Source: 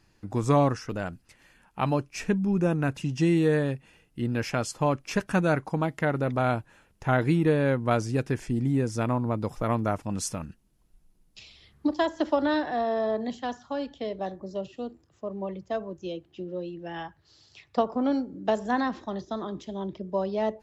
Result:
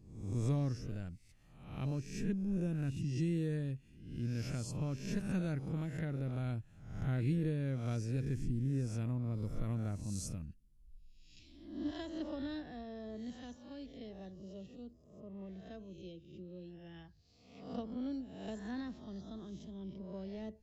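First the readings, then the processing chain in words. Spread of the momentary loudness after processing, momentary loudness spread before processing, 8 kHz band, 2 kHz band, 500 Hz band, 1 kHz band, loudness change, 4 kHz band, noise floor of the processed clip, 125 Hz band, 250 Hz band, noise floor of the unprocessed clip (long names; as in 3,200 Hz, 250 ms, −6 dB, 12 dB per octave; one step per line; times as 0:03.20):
15 LU, 13 LU, −11.0 dB, −18.5 dB, −18.5 dB, −24.0 dB, −11.5 dB, −13.0 dB, −63 dBFS, −6.5 dB, −11.0 dB, −65 dBFS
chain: peak hold with a rise ahead of every peak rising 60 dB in 0.74 s
guitar amp tone stack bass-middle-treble 10-0-1
level +5.5 dB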